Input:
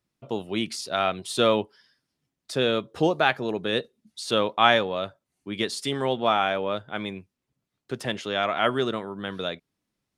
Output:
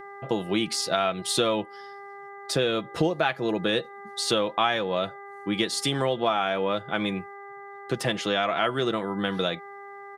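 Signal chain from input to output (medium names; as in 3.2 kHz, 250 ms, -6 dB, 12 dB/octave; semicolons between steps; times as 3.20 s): mains buzz 400 Hz, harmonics 5, -48 dBFS -4 dB/octave; comb 6 ms, depth 43%; compression 4:1, threshold -28 dBFS, peak gain reduction 14 dB; trim +6 dB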